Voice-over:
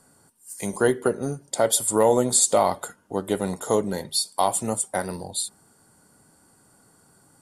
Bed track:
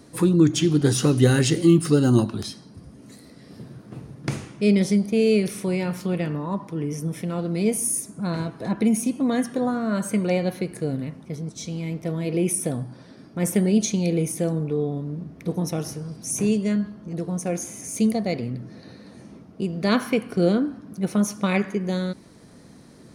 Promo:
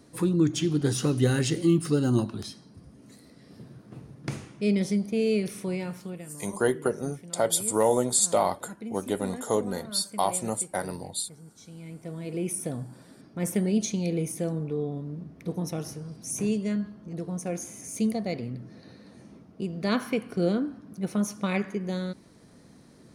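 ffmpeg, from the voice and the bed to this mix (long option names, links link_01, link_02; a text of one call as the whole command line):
ffmpeg -i stem1.wav -i stem2.wav -filter_complex "[0:a]adelay=5800,volume=-4dB[link_01];[1:a]volume=6dB,afade=type=out:start_time=5.72:duration=0.54:silence=0.266073,afade=type=in:start_time=11.55:duration=1.3:silence=0.251189[link_02];[link_01][link_02]amix=inputs=2:normalize=0" out.wav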